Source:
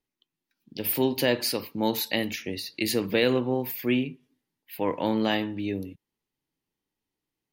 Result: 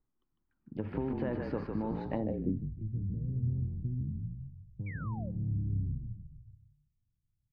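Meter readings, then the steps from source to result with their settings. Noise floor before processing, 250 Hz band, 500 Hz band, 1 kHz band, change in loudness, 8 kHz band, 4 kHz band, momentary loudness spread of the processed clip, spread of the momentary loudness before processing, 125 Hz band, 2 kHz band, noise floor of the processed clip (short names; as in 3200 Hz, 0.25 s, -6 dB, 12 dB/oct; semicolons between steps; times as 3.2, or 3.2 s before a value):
under -85 dBFS, -8.5 dB, -13.0 dB, -12.5 dB, -9.0 dB, under -40 dB, under -30 dB, 12 LU, 10 LU, +4.5 dB, -19.0 dB, -81 dBFS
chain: RIAA curve playback; limiter -13.5 dBFS, peak gain reduction 7 dB; compressor, threshold -25 dBFS, peak gain reduction 8 dB; frequency-shifting echo 0.152 s, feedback 50%, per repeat -40 Hz, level -4 dB; low-pass sweep 1300 Hz -> 120 Hz, 2.08–2.71; painted sound fall, 4.86–5.31, 490–2400 Hz -42 dBFS; gain -6 dB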